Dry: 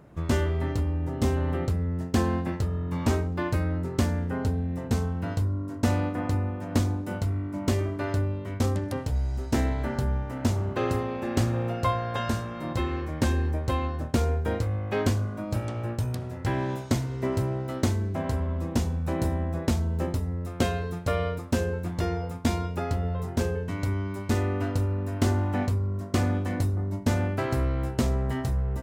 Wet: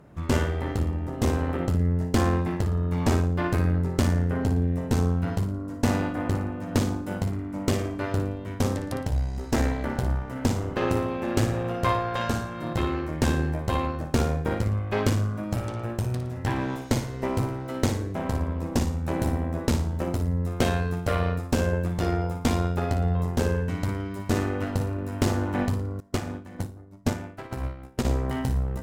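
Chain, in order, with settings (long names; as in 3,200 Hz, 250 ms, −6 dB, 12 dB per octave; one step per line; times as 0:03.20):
harmonic generator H 4 −13 dB, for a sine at −12 dBFS
flutter between parallel walls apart 9.8 metres, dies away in 0.4 s
0:26.00–0:28.05: expander for the loud parts 2.5 to 1, over −32 dBFS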